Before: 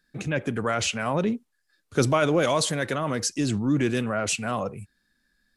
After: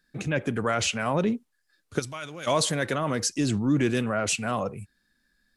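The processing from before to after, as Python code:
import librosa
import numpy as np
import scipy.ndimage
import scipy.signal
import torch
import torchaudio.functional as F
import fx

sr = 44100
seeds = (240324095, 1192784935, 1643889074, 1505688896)

y = fx.tone_stack(x, sr, knobs='5-5-5', at=(1.98, 2.46), fade=0.02)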